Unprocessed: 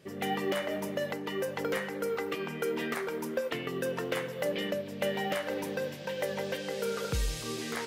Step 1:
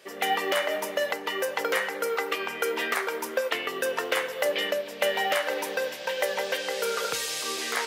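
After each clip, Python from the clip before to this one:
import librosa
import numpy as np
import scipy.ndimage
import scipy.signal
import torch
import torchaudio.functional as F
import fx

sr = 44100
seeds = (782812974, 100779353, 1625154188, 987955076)

y = scipy.signal.sosfilt(scipy.signal.butter(2, 600.0, 'highpass', fs=sr, output='sos'), x)
y = F.gain(torch.from_numpy(y), 9.0).numpy()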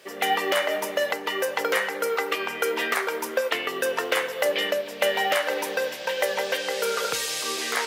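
y = fx.quant_dither(x, sr, seeds[0], bits=12, dither='triangular')
y = F.gain(torch.from_numpy(y), 2.5).numpy()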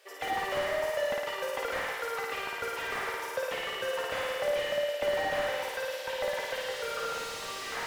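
y = scipy.signal.sosfilt(scipy.signal.cheby2(4, 40, 210.0, 'highpass', fs=sr, output='sos'), x)
y = fx.room_flutter(y, sr, wall_m=9.4, rt60_s=1.3)
y = fx.slew_limit(y, sr, full_power_hz=120.0)
y = F.gain(torch.from_numpy(y), -8.5).numpy()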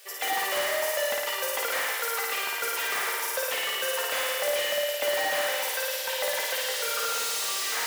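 y = fx.riaa(x, sr, side='recording')
y = fx.hum_notches(y, sr, base_hz=50, count=4)
y = F.gain(torch.from_numpy(y), 3.0).numpy()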